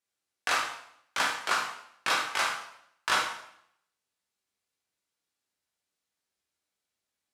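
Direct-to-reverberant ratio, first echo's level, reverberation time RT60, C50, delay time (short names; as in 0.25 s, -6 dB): -2.0 dB, none, 0.70 s, 4.0 dB, none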